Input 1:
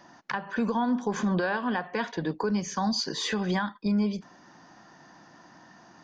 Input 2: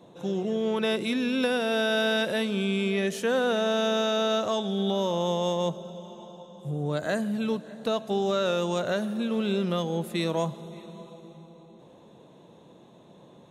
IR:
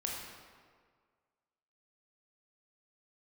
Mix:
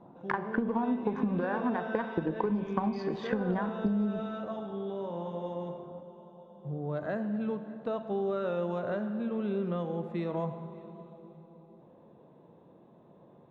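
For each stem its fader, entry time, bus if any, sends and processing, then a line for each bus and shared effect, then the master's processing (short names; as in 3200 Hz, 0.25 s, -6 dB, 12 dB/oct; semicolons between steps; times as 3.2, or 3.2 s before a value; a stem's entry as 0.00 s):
-2.0 dB, 0.00 s, send -10.5 dB, Wiener smoothing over 25 samples; transient shaper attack +7 dB, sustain +1 dB
-7.5 dB, 0.00 s, send -7 dB, auto duck -11 dB, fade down 0.35 s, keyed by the first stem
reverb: on, RT60 1.8 s, pre-delay 18 ms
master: LPF 1500 Hz 12 dB/oct; compressor 6:1, threshold -26 dBFS, peak gain reduction 8.5 dB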